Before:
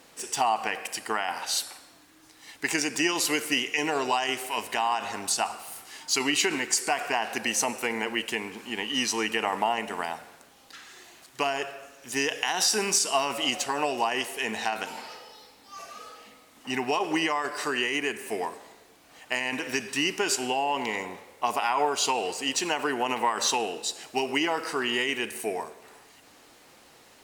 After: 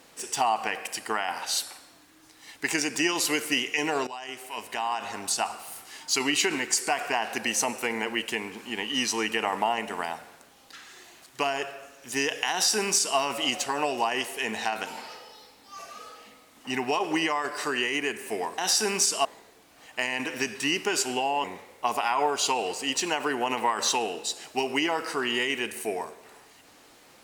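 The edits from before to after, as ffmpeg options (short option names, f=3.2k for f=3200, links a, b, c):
-filter_complex "[0:a]asplit=5[a][b][c][d][e];[a]atrim=end=4.07,asetpts=PTS-STARTPTS,afade=t=out:st=4.066:d=0.004:c=hsin:silence=0.16788[f];[b]atrim=start=4.07:end=18.582,asetpts=PTS-STARTPTS,afade=t=in:d=1.79:c=qsin:silence=0.16788[g];[c]atrim=start=12.508:end=13.182[h];[d]atrim=start=18.578:end=20.772[i];[e]atrim=start=21.028[j];[f][g]concat=n=2:v=0:a=1[k];[k][h]acrossfade=d=0.004:c1=hsin:c2=hsin[l];[l][i]acrossfade=d=0.004:c1=hsin:c2=hsin[m];[m][j]acrossfade=d=0.004:c1=hsin:c2=hsin"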